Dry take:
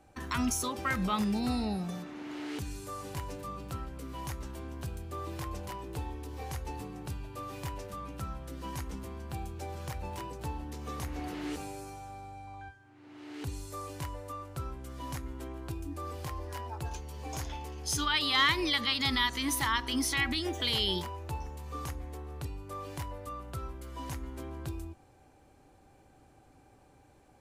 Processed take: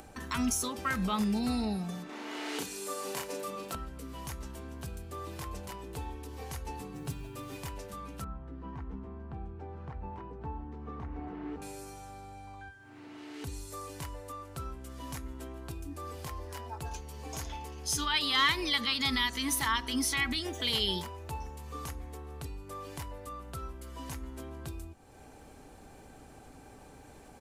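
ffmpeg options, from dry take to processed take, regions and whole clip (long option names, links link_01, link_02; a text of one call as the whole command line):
ffmpeg -i in.wav -filter_complex "[0:a]asettb=1/sr,asplit=3[link_01][link_02][link_03];[link_01]atrim=end=2.094[link_04];[link_02]atrim=start=2.09:end=3.75,asetpts=PTS-STARTPTS,afade=type=in:duration=0.004:curve=qsin,afade=type=out:start_time=1.656:duration=0.004:curve=qsin,highpass=310,acontrast=32,asplit=2[link_05][link_06];[link_06]adelay=36,volume=-3dB[link_07];[link_05][link_07]amix=inputs=2:normalize=0,atrim=end_sample=73206[link_08];[link_03]atrim=start=3.746[link_09];[link_04][link_08]acrossfade=duration=0.004:curve1=hsin:curve2=qsin[link_10];[link_10][link_09]acrossfade=duration=0.004:curve1=qsin:curve2=hsin,asettb=1/sr,asplit=3[link_11][link_12][link_13];[link_11]atrim=end=6.944[link_14];[link_12]atrim=start=6.94:end=7.57,asetpts=PTS-STARTPTS,afade=type=in:duration=0.004:curve=qsin,afade=type=out:start_time=0.626:duration=0.004:curve=qsin,equalizer=frequency=160:width=1.2:gain=4.5,aecho=1:1:7.3:0.6,atrim=end_sample=27783,acrusher=bits=8:mode=log:mix=0:aa=0.000001[link_15];[link_13]atrim=start=7.566[link_16];[link_14][link_15]acrossfade=duration=0.004:curve1=hsin:curve2=qsin[link_17];[link_17][link_16]acrossfade=duration=0.004:curve1=qsin:curve2=hsin,asettb=1/sr,asplit=3[link_18][link_19][link_20];[link_18]atrim=end=8.244[link_21];[link_19]atrim=start=8.24:end=11.62,asetpts=PTS-STARTPTS,afade=type=in:duration=0.004:curve=qsin,afade=type=out:start_time=3.376:duration=0.004:curve=qsin,lowpass=1200,equalizer=frequency=560:width_type=o:width=0.21:gain=-11.5[link_22];[link_20]atrim=start=11.616[link_23];[link_21][link_22]acrossfade=duration=0.004:curve1=hsin:curve2=qsin[link_24];[link_24][link_23]acrossfade=duration=0.004:curve1=qsin:curve2=hsin,aecho=1:1:4.5:0.32,acompressor=mode=upward:threshold=-40dB:ratio=2.5,equalizer=frequency=10000:width=0.54:gain=3,volume=-1.5dB" out.wav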